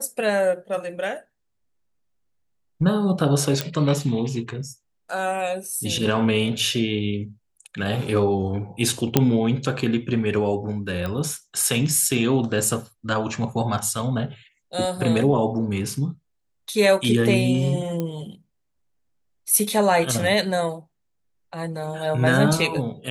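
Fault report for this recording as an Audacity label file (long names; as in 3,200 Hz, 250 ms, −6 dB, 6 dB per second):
3.610000	3.610000	click −7 dBFS
9.170000	9.170000	click −1 dBFS
11.060000	11.060000	click −16 dBFS
18.000000	18.000000	click −14 dBFS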